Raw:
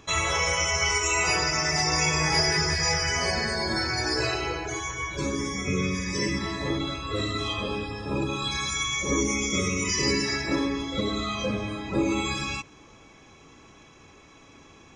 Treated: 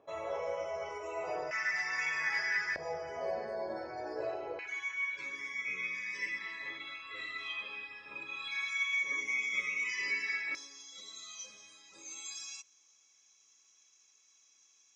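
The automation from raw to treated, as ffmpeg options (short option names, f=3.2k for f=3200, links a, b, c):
-af "asetnsamples=n=441:p=0,asendcmd='1.51 bandpass f 1800;2.76 bandpass f 590;4.59 bandpass f 2200;10.55 bandpass f 6200',bandpass=f=590:t=q:w=4.2:csg=0"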